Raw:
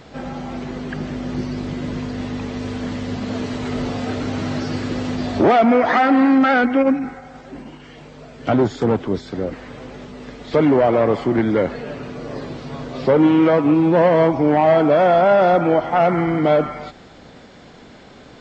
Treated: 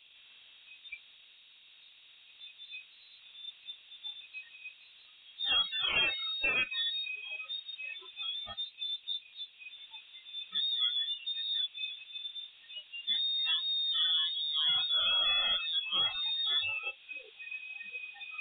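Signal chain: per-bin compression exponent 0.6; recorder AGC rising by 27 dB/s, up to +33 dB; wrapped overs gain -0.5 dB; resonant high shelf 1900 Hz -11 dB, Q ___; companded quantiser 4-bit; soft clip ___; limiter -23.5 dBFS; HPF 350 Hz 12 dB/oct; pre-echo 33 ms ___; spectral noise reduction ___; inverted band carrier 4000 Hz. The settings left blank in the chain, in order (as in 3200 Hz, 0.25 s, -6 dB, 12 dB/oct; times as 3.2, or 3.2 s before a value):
3, -14.5 dBFS, -22 dB, 29 dB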